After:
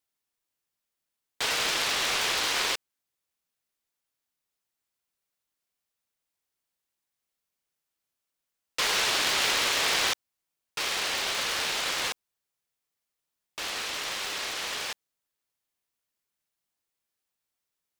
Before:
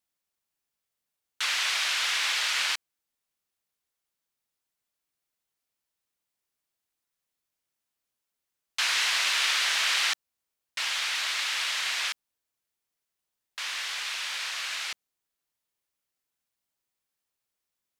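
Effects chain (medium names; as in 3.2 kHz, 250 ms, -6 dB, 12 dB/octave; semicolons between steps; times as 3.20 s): cycle switcher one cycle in 3, inverted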